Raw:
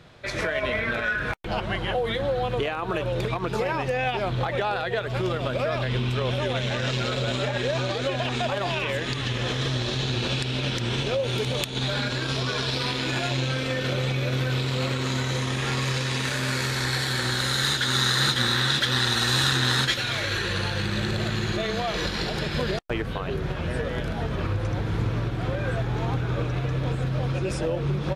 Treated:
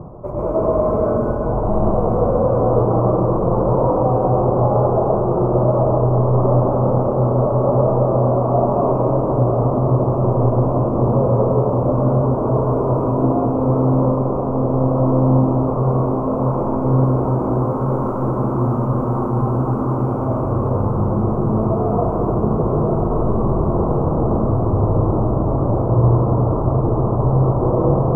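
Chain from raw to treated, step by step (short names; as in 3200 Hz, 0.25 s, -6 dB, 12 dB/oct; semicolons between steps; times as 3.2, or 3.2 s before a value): half-waves squared off; on a send: diffused feedback echo 1.117 s, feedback 79%, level -7 dB; on the sum: limiter -14 dBFS, peak gain reduction 8 dB; elliptic low-pass 1100 Hz, stop band 40 dB; digital reverb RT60 1.9 s, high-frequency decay 0.75×, pre-delay 70 ms, DRR -5.5 dB; reverse; upward compressor, threshold -18 dBFS; reverse; gain +1 dB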